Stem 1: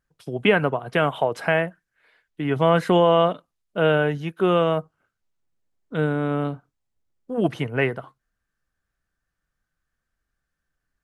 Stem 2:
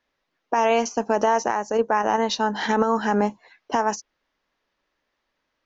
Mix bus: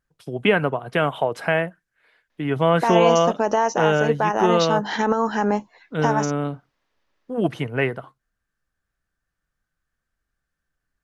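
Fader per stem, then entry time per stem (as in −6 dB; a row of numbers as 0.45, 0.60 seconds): 0.0, 0.0 decibels; 0.00, 2.30 seconds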